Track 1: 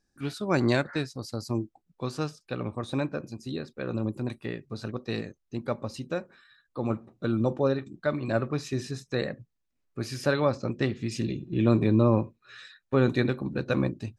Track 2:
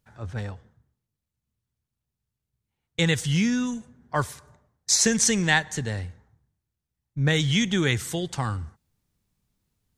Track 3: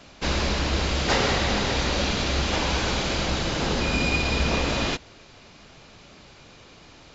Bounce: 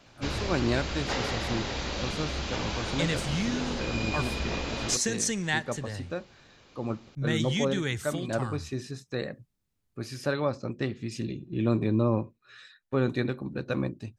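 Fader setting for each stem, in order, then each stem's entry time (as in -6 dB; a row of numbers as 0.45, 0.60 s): -3.5, -7.5, -8.5 dB; 0.00, 0.00, 0.00 s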